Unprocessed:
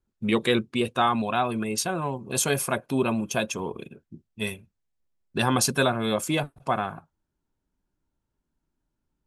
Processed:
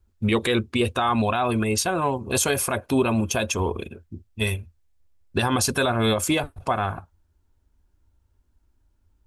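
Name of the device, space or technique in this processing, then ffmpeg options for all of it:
car stereo with a boomy subwoofer: -af "lowshelf=f=110:t=q:w=3:g=8.5,alimiter=limit=-19dB:level=0:latency=1:release=97,volume=7dB"

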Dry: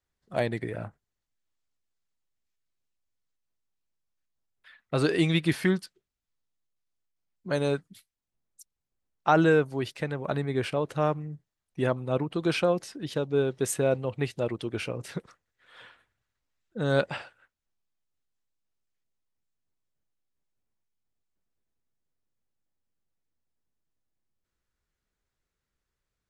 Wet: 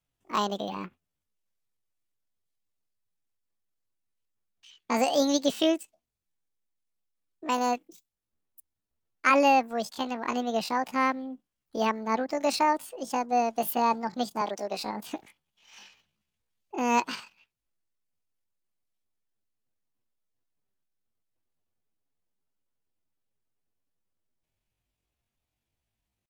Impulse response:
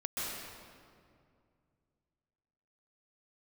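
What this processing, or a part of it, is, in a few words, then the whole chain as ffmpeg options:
chipmunk voice: -filter_complex "[0:a]asetrate=76340,aresample=44100,atempo=0.577676,asettb=1/sr,asplit=3[a][b][c];[a]atrim=end=14.414[d];[b]atrim=start=14.41:end=14.84,asetpts=PTS-STARTPTS,afade=t=in:d=0.004:c=qsin,afade=t=out:st=0.426:d=0.004:c=qsin,highpass=f=230:w=0.5412,highpass=f=230:w=1.3066[e];[c]atrim=start=14.836[f];[d][e]acrossfade=d=0.004:c1=hsin:c2=qsin[g];[g][f]acrossfade=d=0.004:c1=qsin:c2=hsin"

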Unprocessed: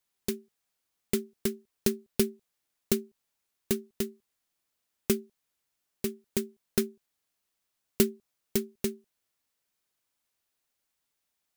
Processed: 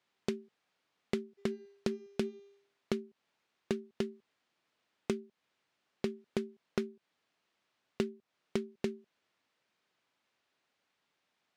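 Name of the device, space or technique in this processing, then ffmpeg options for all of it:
AM radio: -filter_complex "[0:a]asplit=3[a][b][c];[a]afade=t=out:st=1.37:d=0.02[d];[b]bandreject=f=399.3:t=h:w=4,bandreject=f=798.6:t=h:w=4,bandreject=f=1.1979k:t=h:w=4,bandreject=f=1.5972k:t=h:w=4,bandreject=f=1.9965k:t=h:w=4,bandreject=f=2.3958k:t=h:w=4,bandreject=f=2.7951k:t=h:w=4,bandreject=f=3.1944k:t=h:w=4,bandreject=f=3.5937k:t=h:w=4,bandreject=f=3.993k:t=h:w=4,bandreject=f=4.3923k:t=h:w=4,bandreject=f=4.7916k:t=h:w=4,bandreject=f=5.1909k:t=h:w=4,bandreject=f=5.5902k:t=h:w=4,bandreject=f=5.9895k:t=h:w=4,bandreject=f=6.3888k:t=h:w=4,bandreject=f=6.7881k:t=h:w=4,bandreject=f=7.1874k:t=h:w=4,afade=t=in:st=1.37:d=0.02,afade=t=out:st=2.93:d=0.02[e];[c]afade=t=in:st=2.93:d=0.02[f];[d][e][f]amix=inputs=3:normalize=0,highpass=140,lowpass=3.4k,acompressor=threshold=-39dB:ratio=5,asoftclip=type=tanh:threshold=-24dB,volume=8dB"

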